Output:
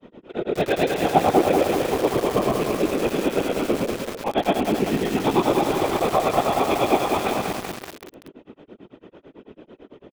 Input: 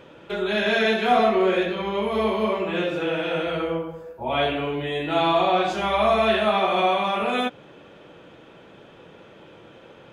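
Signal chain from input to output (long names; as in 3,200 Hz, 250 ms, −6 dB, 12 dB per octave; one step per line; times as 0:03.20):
loose part that buzzes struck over −40 dBFS, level −25 dBFS
low-pass filter 3,100 Hz 6 dB per octave
mains-hum notches 50/100/150/200/250/300/350 Hz
double-tracking delay 20 ms −11.5 dB
on a send: repeating echo 116 ms, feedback 38%, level −11.5 dB
on the sum: granular cloud 109 ms, grains 9 per second, pitch spread up and down by 0 semitones
parametric band 1,800 Hz −10 dB 0.44 octaves
hollow resonant body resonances 310/1,900 Hz, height 14 dB, ringing for 35 ms
random phases in short frames
dynamic equaliser 810 Hz, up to +4 dB, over −40 dBFS, Q 4.2
feedback echo at a low word length 190 ms, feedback 80%, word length 5 bits, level −4 dB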